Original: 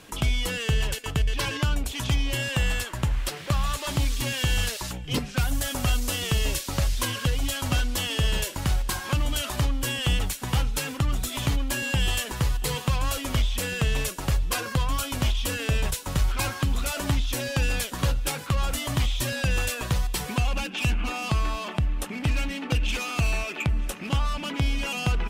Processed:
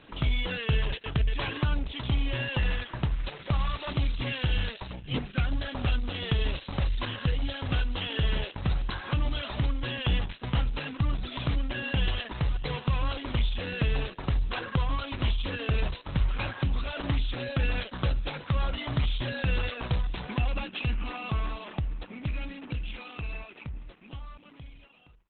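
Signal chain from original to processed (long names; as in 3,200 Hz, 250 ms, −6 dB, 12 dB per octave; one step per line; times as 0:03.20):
fade-out on the ending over 5.28 s
level −2 dB
Opus 8 kbit/s 48,000 Hz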